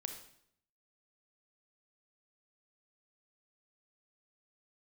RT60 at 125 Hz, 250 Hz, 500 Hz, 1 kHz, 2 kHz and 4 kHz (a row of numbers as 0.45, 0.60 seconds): 0.85, 0.80, 0.70, 0.65, 0.60, 0.60 seconds